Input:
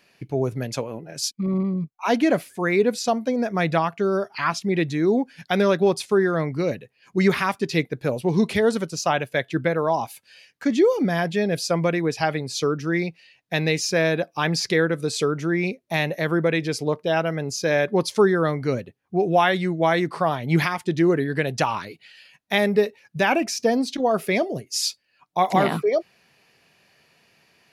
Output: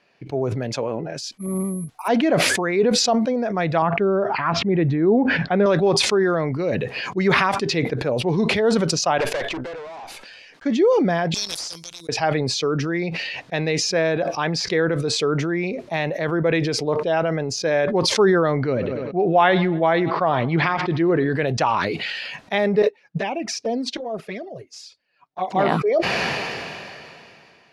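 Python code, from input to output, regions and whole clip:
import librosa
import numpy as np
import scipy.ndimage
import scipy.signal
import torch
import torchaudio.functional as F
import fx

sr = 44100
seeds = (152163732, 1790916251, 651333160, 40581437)

y = fx.chain(x, sr, fx.resample_bad(factor=4, down='none', up='zero_stuff'),
    fx.band_widen(depth_pct=100), at=(1.35, 2.08))
y = fx.chain(y, sr, fx.lowpass(hz=2100.0, slope=12),
    fx.low_shelf(hz=350.0, db=6.0), at=(3.82, 5.66))
y = fx.chain(y, sr, fx.highpass(hz=260.0, slope=12),
    fx.tube_stage(drive_db=36.0, bias=0.55), at=(9.18, 10.65))
y = fx.chain(y, sr, fx.cheby2_highpass(hz=2100.0, order=4, stop_db=50),
    fx.leveller(passes=3), at=(11.34, 12.09))
y = fx.chain(y, sr, fx.lowpass(hz=4600.0, slope=24),
    fx.echo_feedback(ms=98, feedback_pct=56, wet_db=-23), at=(18.57, 21.3))
y = fx.chain(y, sr, fx.env_flanger(rest_ms=8.8, full_db=-15.5),
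    fx.upward_expand(threshold_db=-42.0, expansion=2.5), at=(22.82, 25.59))
y = scipy.signal.sosfilt(scipy.signal.butter(2, 5600.0, 'lowpass', fs=sr, output='sos'), y)
y = fx.peak_eq(y, sr, hz=700.0, db=6.0, octaves=2.4)
y = fx.sustainer(y, sr, db_per_s=23.0)
y = y * 10.0 ** (-4.5 / 20.0)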